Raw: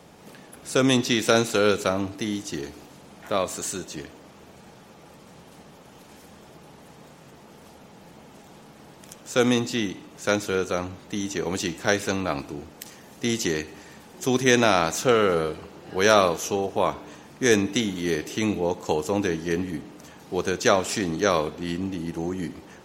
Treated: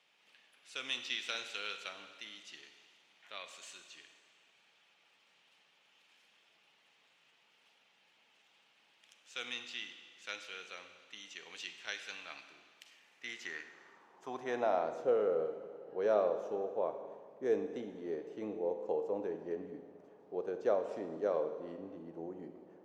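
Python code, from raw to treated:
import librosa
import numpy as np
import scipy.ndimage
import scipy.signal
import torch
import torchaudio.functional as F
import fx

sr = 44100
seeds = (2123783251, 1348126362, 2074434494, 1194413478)

y = fx.rev_schroeder(x, sr, rt60_s=1.9, comb_ms=33, drr_db=8.5)
y = fx.filter_sweep_bandpass(y, sr, from_hz=2800.0, to_hz=520.0, start_s=12.91, end_s=15.03, q=2.2)
y = F.gain(torch.from_numpy(y), -8.5).numpy()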